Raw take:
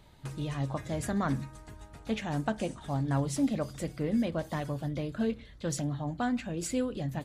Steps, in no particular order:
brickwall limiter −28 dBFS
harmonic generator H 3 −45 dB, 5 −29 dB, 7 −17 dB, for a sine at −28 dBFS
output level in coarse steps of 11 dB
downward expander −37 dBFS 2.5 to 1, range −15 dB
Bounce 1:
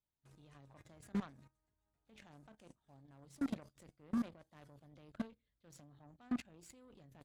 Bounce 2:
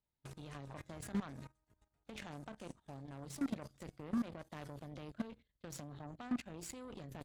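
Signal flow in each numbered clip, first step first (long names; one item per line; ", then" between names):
brickwall limiter, then output level in coarse steps, then downward expander, then harmonic generator
brickwall limiter, then downward expander, then output level in coarse steps, then harmonic generator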